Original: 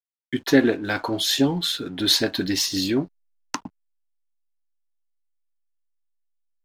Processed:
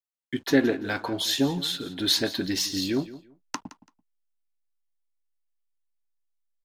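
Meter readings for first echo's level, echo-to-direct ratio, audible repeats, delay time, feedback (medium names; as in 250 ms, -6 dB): -16.5 dB, -16.5 dB, 2, 168 ms, 21%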